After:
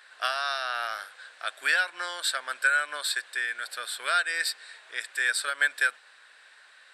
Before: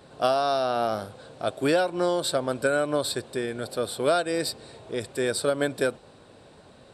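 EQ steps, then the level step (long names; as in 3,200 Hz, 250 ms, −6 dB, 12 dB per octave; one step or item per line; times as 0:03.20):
high-pass with resonance 1,700 Hz, resonance Q 3.9
0.0 dB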